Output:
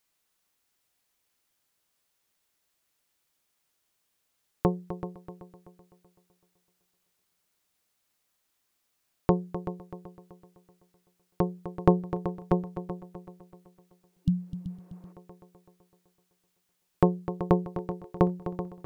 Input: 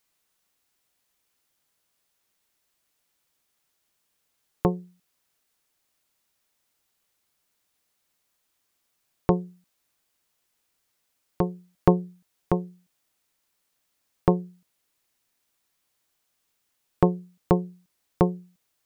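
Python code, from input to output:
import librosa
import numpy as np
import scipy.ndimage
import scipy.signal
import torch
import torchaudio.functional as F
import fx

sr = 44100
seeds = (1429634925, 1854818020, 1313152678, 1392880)

y = fx.echo_heads(x, sr, ms=127, heads='second and third', feedback_pct=42, wet_db=-12)
y = fx.spec_repair(y, sr, seeds[0], start_s=14.15, length_s=0.95, low_hz=290.0, high_hz=2800.0, source='both')
y = y * 10.0 ** (-2.0 / 20.0)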